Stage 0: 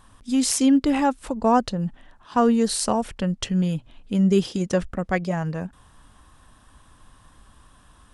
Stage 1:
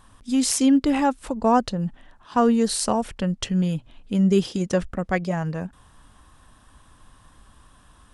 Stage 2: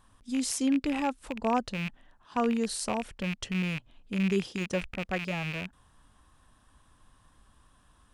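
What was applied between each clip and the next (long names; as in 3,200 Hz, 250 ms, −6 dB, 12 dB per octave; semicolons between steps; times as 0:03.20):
no processing that can be heard
loose part that buzzes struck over −31 dBFS, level −16 dBFS; level −9 dB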